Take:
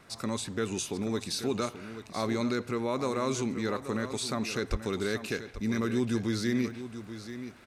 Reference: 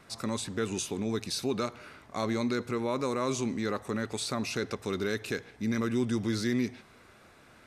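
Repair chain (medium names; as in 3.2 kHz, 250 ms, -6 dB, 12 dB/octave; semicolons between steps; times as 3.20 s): clip repair -17.5 dBFS; de-click; 4.70–4.82 s: high-pass 140 Hz 24 dB/octave; inverse comb 832 ms -11.5 dB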